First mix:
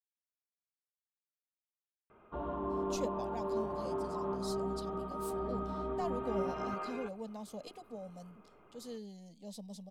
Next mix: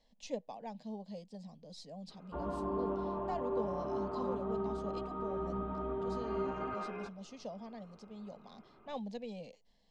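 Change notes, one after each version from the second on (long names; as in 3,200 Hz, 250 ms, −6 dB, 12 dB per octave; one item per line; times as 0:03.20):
speech: entry −2.70 s
master: add high-frequency loss of the air 120 metres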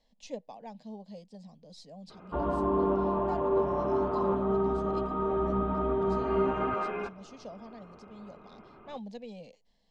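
background +9.0 dB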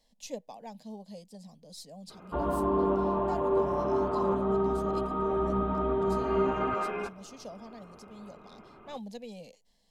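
master: remove high-frequency loss of the air 120 metres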